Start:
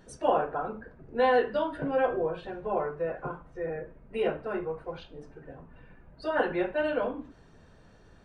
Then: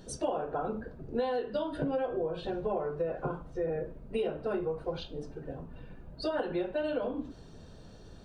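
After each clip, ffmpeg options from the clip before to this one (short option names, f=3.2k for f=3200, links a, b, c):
-af "equalizer=f=1k:t=o:w=1:g=-4,equalizer=f=2k:t=o:w=1:g=-10,equalizer=f=4k:t=o:w=1:g=5,acompressor=threshold=-34dB:ratio=16,volume=6dB"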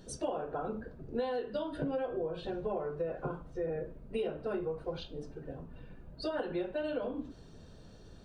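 -af "equalizer=f=820:t=o:w=0.77:g=-2,volume=-2.5dB"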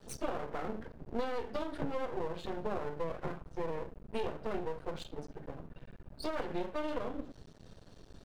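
-af "aeval=exprs='max(val(0),0)':c=same,volume=2.5dB"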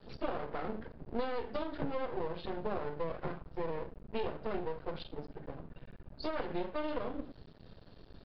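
-af "aresample=11025,aresample=44100"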